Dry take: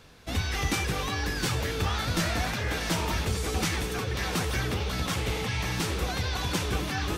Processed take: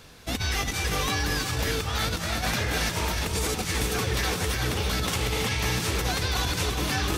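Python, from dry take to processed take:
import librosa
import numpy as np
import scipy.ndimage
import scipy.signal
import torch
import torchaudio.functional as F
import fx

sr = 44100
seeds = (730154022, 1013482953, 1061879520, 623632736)

y = fx.high_shelf(x, sr, hz=4900.0, db=6.0)
y = fx.over_compress(y, sr, threshold_db=-29.0, ratio=-0.5)
y = y + 10.0 ** (-7.5 / 20.0) * np.pad(y, (int(329 * sr / 1000.0), 0))[:len(y)]
y = y * librosa.db_to_amplitude(2.0)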